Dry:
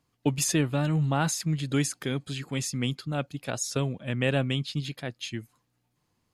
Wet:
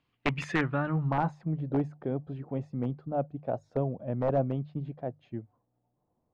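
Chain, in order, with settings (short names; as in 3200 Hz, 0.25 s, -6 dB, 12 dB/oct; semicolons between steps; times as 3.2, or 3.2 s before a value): notches 50/100/150 Hz; wrapped overs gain 15.5 dB; low-pass sweep 3000 Hz -> 690 Hz, 0.07–1.51; gain -3 dB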